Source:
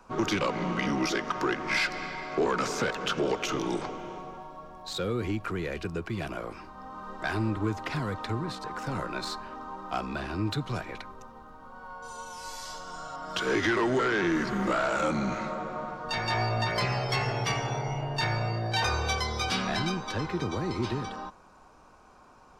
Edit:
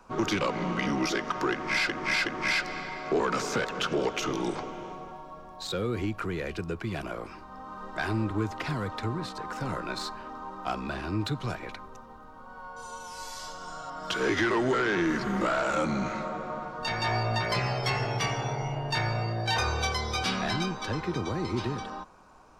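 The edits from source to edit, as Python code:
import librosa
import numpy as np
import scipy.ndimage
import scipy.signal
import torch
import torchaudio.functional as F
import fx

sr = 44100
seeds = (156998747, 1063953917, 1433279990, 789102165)

y = fx.edit(x, sr, fx.repeat(start_s=1.52, length_s=0.37, count=3), tone=tone)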